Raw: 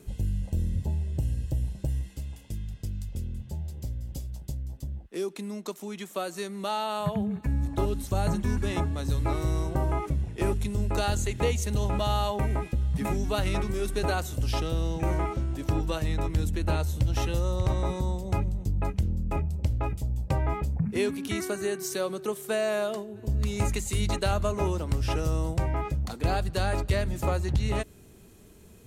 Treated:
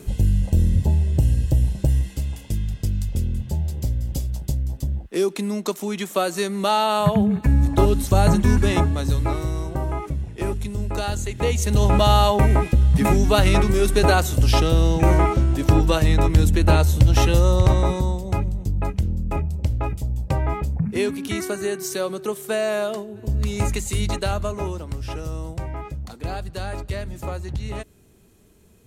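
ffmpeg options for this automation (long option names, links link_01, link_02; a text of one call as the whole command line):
ffmpeg -i in.wav -af "volume=20dB,afade=type=out:start_time=8.59:duration=0.92:silence=0.354813,afade=type=in:start_time=11.36:duration=0.56:silence=0.334965,afade=type=out:start_time=17.54:duration=0.69:silence=0.473151,afade=type=out:start_time=23.91:duration=1.02:silence=0.446684" out.wav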